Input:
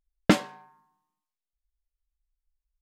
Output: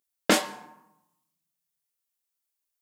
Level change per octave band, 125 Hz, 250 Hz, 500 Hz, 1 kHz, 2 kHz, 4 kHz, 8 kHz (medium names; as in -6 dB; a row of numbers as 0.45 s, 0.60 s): -10.0 dB, -4.5 dB, +1.0 dB, +2.0 dB, +2.5 dB, +5.0 dB, +9.0 dB